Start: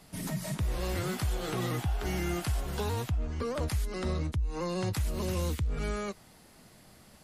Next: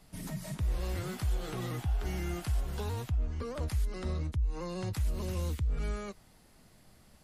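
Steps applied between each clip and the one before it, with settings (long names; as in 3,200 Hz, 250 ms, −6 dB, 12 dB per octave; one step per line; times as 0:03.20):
low-shelf EQ 67 Hz +11.5 dB
level −6 dB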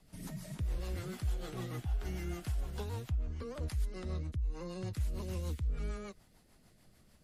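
rotating-speaker cabinet horn 6.7 Hz
level −2.5 dB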